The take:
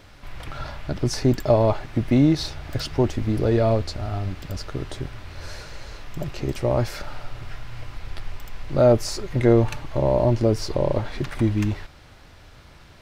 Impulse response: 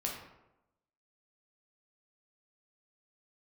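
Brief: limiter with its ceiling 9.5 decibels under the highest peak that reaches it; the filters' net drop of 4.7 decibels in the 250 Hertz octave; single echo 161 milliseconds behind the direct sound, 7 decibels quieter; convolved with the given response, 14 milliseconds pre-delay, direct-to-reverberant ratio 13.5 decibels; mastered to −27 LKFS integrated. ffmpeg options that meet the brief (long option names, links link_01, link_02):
-filter_complex "[0:a]equalizer=frequency=250:width_type=o:gain=-6.5,alimiter=limit=-16.5dB:level=0:latency=1,aecho=1:1:161:0.447,asplit=2[link_01][link_02];[1:a]atrim=start_sample=2205,adelay=14[link_03];[link_02][link_03]afir=irnorm=-1:irlink=0,volume=-16dB[link_04];[link_01][link_04]amix=inputs=2:normalize=0,volume=1.5dB"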